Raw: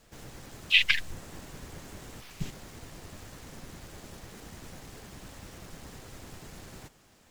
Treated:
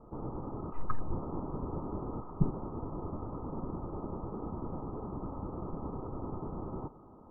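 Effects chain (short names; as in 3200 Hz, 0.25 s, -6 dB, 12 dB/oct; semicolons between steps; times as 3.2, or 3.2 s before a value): rippled Chebyshev low-pass 1300 Hz, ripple 6 dB; gain +12 dB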